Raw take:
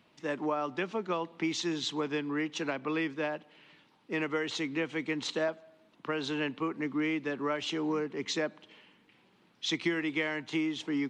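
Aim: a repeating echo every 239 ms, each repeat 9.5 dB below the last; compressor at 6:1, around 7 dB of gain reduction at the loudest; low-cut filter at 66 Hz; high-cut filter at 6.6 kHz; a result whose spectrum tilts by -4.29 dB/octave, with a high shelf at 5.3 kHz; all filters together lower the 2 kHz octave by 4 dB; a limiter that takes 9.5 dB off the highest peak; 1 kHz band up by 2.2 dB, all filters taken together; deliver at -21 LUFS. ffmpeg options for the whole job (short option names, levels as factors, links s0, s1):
-af "highpass=66,lowpass=6600,equalizer=f=1000:t=o:g=4.5,equalizer=f=2000:t=o:g=-7,highshelf=f=5300:g=6.5,acompressor=threshold=0.02:ratio=6,alimiter=level_in=2.66:limit=0.0631:level=0:latency=1,volume=0.376,aecho=1:1:239|478|717|956:0.335|0.111|0.0365|0.012,volume=10"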